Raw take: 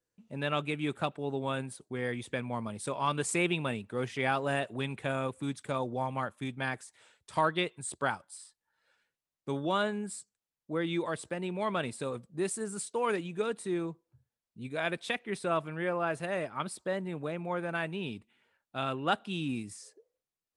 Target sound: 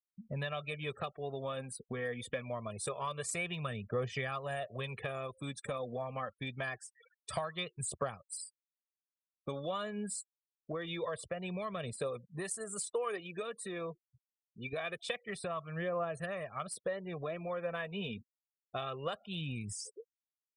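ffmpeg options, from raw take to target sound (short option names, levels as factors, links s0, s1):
-filter_complex "[0:a]asettb=1/sr,asplit=3[s0][s1][s2];[s0]atrim=end=11.944[s3];[s1]atrim=start=11.94:end=14.73,asetpts=PTS-STARTPTS,afade=t=in:d=0.004:c=qsin,afade=t=out:st=2.786:d=0.004:c=qsin,highpass=f=290:p=1[s4];[s2]atrim=start=14.726[s5];[s3][s4]acrossfade=d=0.004:c1=hsin:c2=qsin[s6];[s6][s5]acrossfade=d=0.004:c1=qsin:c2=hsin,afftfilt=real='re*gte(hypot(re,im),0.00316)':imag='im*gte(hypot(re,im),0.00316)':win_size=1024:overlap=0.75,aecho=1:1:1.7:0.72,acompressor=threshold=0.00794:ratio=5,aphaser=in_gain=1:out_gain=1:delay=4.5:decay=0.4:speed=0.25:type=triangular,volume=1.78"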